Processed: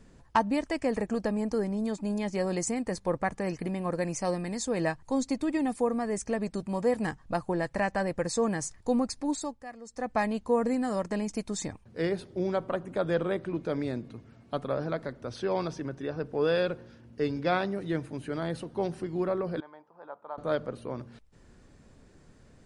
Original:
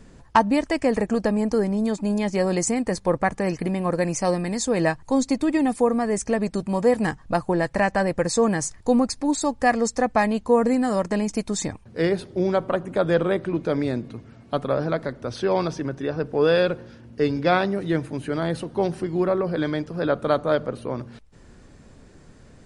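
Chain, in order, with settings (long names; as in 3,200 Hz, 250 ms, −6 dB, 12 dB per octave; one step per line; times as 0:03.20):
0:09.32–0:10.18: duck −16.5 dB, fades 0.32 s
0:19.60–0:20.38: resonant band-pass 910 Hz, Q 5.2
level −7.5 dB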